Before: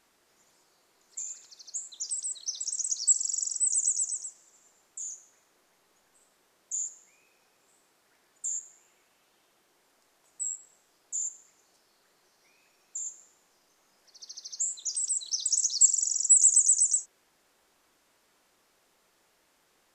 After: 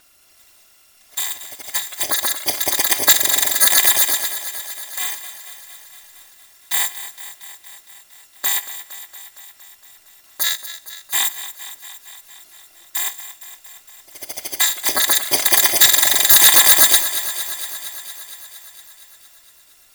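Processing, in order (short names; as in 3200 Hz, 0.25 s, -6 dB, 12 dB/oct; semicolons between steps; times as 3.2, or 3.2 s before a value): FFT order left unsorted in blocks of 256 samples; sine folder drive 6 dB, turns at -9.5 dBFS; thinning echo 0.231 s, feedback 72%, high-pass 190 Hz, level -13 dB; gain +4.5 dB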